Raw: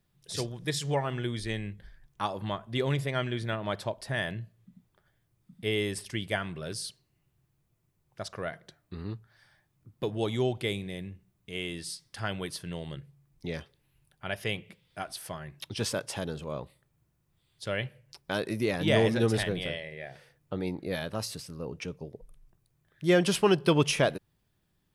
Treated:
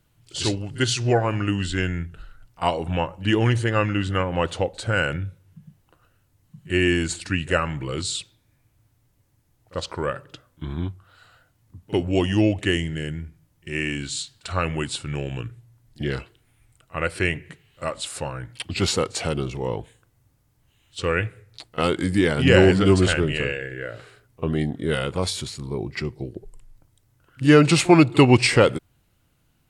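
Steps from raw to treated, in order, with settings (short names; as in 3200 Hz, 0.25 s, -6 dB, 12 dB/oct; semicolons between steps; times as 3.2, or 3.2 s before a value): pre-echo 38 ms -22.5 dB; varispeed -16%; gain +9 dB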